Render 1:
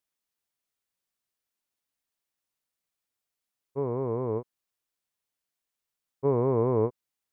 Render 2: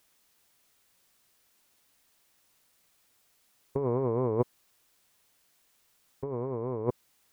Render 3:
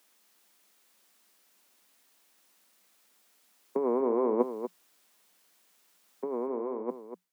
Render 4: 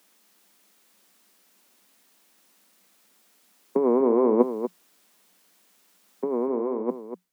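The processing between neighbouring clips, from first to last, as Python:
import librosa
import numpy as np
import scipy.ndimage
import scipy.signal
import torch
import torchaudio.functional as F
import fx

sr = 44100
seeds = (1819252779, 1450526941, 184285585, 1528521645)

y1 = fx.over_compress(x, sr, threshold_db=-38.0, ratio=-1.0)
y1 = y1 * 10.0 ** (7.5 / 20.0)
y2 = fx.fade_out_tail(y1, sr, length_s=0.86)
y2 = scipy.signal.sosfilt(scipy.signal.cheby1(8, 1.0, 180.0, 'highpass', fs=sr, output='sos'), y2)
y2 = y2 + 10.0 ** (-9.5 / 20.0) * np.pad(y2, (int(240 * sr / 1000.0), 0))[:len(y2)]
y2 = y2 * 10.0 ** (2.5 / 20.0)
y3 = fx.low_shelf(y2, sr, hz=240.0, db=10.5)
y3 = y3 * 10.0 ** (4.0 / 20.0)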